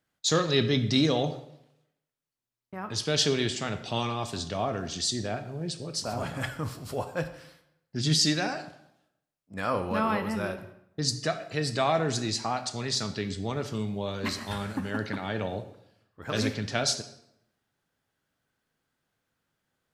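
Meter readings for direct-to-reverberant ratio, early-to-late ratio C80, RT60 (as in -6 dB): 8.0 dB, 14.0 dB, 0.80 s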